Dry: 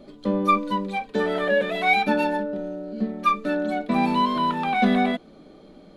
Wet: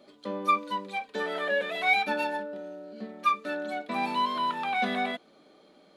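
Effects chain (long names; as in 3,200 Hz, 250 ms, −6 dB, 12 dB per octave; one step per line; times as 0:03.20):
high-pass filter 840 Hz 6 dB per octave
level −2.5 dB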